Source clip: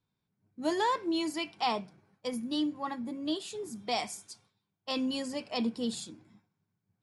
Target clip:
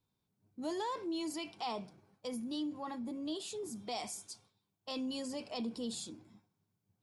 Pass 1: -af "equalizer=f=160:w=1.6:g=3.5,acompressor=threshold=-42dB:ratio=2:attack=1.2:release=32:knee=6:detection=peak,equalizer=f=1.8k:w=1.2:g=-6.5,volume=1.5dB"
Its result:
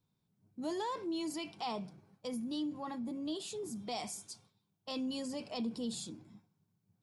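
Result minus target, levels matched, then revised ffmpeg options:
125 Hz band +3.5 dB
-af "equalizer=f=160:w=1.6:g=-4,acompressor=threshold=-42dB:ratio=2:attack=1.2:release=32:knee=6:detection=peak,equalizer=f=1.8k:w=1.2:g=-6.5,volume=1.5dB"

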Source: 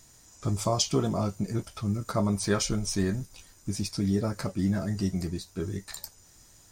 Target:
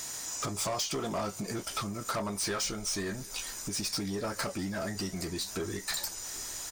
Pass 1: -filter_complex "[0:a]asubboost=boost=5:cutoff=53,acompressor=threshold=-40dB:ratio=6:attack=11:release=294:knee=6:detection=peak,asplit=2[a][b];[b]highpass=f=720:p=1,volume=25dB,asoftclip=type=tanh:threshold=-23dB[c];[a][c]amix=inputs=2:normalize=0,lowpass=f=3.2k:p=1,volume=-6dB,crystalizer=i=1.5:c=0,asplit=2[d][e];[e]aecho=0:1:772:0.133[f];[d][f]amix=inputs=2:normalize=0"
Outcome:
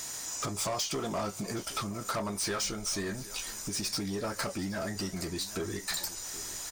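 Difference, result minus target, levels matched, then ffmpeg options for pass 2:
echo-to-direct +6.5 dB
-filter_complex "[0:a]asubboost=boost=5:cutoff=53,acompressor=threshold=-40dB:ratio=6:attack=11:release=294:knee=6:detection=peak,asplit=2[a][b];[b]highpass=f=720:p=1,volume=25dB,asoftclip=type=tanh:threshold=-23dB[c];[a][c]amix=inputs=2:normalize=0,lowpass=f=3.2k:p=1,volume=-6dB,crystalizer=i=1.5:c=0,asplit=2[d][e];[e]aecho=0:1:772:0.0631[f];[d][f]amix=inputs=2:normalize=0"

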